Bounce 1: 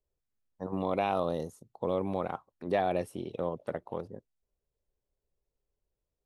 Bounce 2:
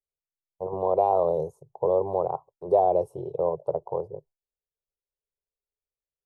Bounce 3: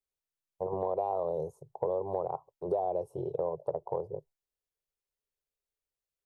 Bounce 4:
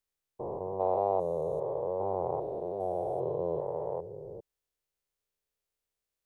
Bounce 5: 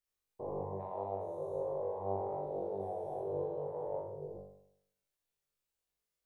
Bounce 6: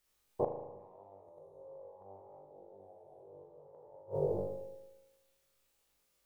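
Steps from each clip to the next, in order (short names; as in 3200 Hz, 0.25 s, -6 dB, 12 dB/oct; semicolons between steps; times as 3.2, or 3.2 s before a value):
gate with hold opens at -50 dBFS; EQ curve 100 Hz 0 dB, 150 Hz +5 dB, 230 Hz -24 dB, 400 Hz +7 dB, 970 Hz +5 dB, 1700 Hz -30 dB, 6600 Hz -11 dB; gain +2.5 dB
compressor 4:1, threshold -29 dBFS, peak gain reduction 12 dB
stepped spectrum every 0.4 s; gain +5 dB
compressor 6:1, threshold -33 dBFS, peak gain reduction 10 dB; on a send: flutter echo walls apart 3.5 m, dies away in 0.74 s; on the sum: gain -6 dB
flipped gate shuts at -33 dBFS, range -30 dB; reverb RT60 1.1 s, pre-delay 37 ms, DRR 6 dB; gain +12 dB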